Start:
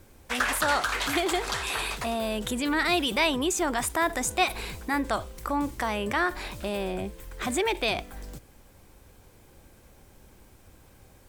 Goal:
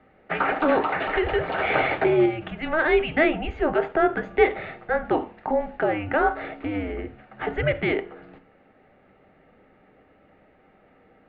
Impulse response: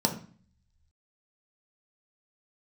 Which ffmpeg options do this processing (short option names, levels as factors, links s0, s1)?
-filter_complex "[0:a]asettb=1/sr,asplit=3[s0][s1][s2];[s0]atrim=end=1.584[s3];[s1]atrim=start=1.58:end=2.26,asetpts=PTS-STARTPTS,afade=t=in:d=0.004:c=qsin,afade=t=out:st=0.676:d=0.004:c=qsin,acontrast=47[s4];[s2]atrim=start=2.256[s5];[s3][s4]acrossfade=d=0.004:c1=hsin:c2=qsin[s6];[s6][s5]acrossfade=d=0.004:c1=qsin:c2=hsin,asplit=2[s7][s8];[1:a]atrim=start_sample=2205,asetrate=52920,aresample=44100[s9];[s8][s9]afir=irnorm=-1:irlink=0,volume=0.422[s10];[s7][s10]amix=inputs=2:normalize=0,highpass=f=530:t=q:w=0.5412,highpass=f=530:t=q:w=1.307,lowpass=f=3000:t=q:w=0.5176,lowpass=f=3000:t=q:w=0.7071,lowpass=f=3000:t=q:w=1.932,afreqshift=-310"